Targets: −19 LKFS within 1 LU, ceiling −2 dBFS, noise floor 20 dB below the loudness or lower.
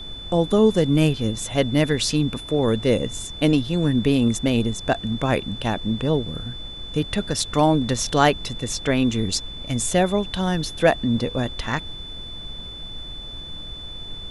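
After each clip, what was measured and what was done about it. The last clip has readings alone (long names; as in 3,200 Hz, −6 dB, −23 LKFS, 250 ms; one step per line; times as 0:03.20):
interfering tone 3,500 Hz; level of the tone −35 dBFS; background noise floor −36 dBFS; target noise floor −42 dBFS; integrated loudness −22.0 LKFS; sample peak −3.5 dBFS; target loudness −19.0 LKFS
→ notch filter 3,500 Hz, Q 30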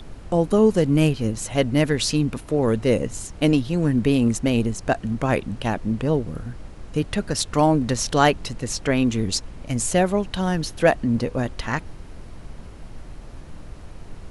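interfering tone none found; background noise floor −40 dBFS; target noise floor −42 dBFS
→ noise reduction from a noise print 6 dB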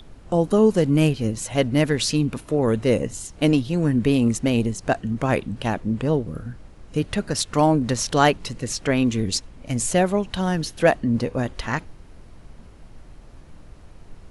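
background noise floor −45 dBFS; integrated loudness −22.0 LKFS; sample peak −4.0 dBFS; target loudness −19.0 LKFS
→ level +3 dB
brickwall limiter −2 dBFS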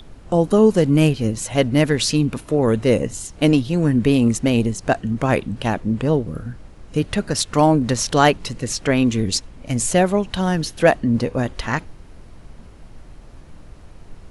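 integrated loudness −19.0 LKFS; sample peak −2.0 dBFS; background noise floor −42 dBFS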